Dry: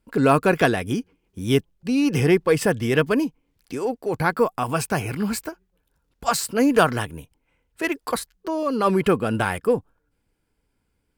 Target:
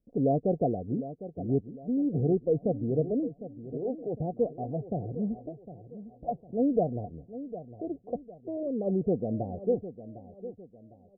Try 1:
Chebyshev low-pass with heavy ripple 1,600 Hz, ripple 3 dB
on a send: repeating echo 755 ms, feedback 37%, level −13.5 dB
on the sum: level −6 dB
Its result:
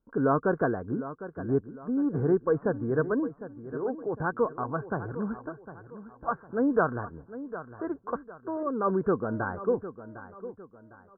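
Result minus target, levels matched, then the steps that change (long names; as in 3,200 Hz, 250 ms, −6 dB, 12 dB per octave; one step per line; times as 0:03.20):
1,000 Hz band +5.0 dB
change: Chebyshev low-pass with heavy ripple 740 Hz, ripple 3 dB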